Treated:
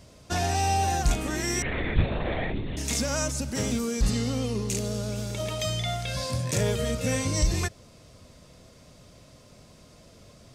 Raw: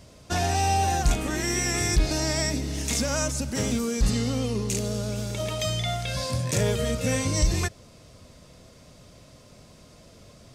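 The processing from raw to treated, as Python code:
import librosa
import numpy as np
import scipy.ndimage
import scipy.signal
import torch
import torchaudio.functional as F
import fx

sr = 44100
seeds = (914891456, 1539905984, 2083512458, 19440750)

y = fx.lpc_vocoder(x, sr, seeds[0], excitation='whisper', order=10, at=(1.62, 2.77))
y = F.gain(torch.from_numpy(y), -1.5).numpy()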